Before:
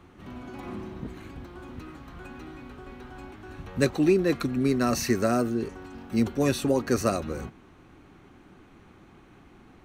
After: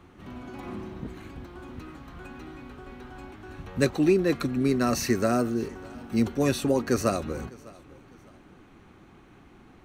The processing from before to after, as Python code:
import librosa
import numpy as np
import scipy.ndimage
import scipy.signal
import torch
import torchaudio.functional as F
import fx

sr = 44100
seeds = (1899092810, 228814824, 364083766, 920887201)

y = fx.echo_feedback(x, sr, ms=603, feedback_pct=34, wet_db=-23)